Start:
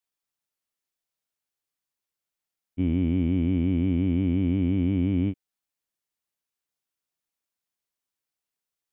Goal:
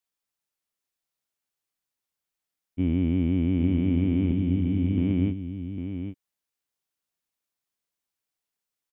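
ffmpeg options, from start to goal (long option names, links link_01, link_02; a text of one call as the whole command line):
ffmpeg -i in.wav -filter_complex "[0:a]asettb=1/sr,asplit=3[link_01][link_02][link_03];[link_01]atrim=end=4.314[link_04];[link_02]atrim=start=4.31:end=4.98,asetpts=PTS-STARTPTS,afade=type=in:duration=0.004:curve=qsin,afade=type=out:start_time=0.666:duration=0.004:curve=qsin,acrossover=split=300|3000[link_05][link_06][link_07];[link_06]acompressor=threshold=-43dB:ratio=3[link_08];[link_05][link_08][link_07]amix=inputs=3:normalize=0[link_09];[link_03]atrim=start=4.976[link_10];[link_04][link_09]acrossfade=duration=0.004:curve1=hsin:curve2=qsin[link_11];[link_11][link_10]acrossfade=duration=0.004:curve1=qsin:curve2=hsin,asplit=2[link_12][link_13];[link_13]aecho=0:1:803:0.376[link_14];[link_12][link_14]amix=inputs=2:normalize=0" out.wav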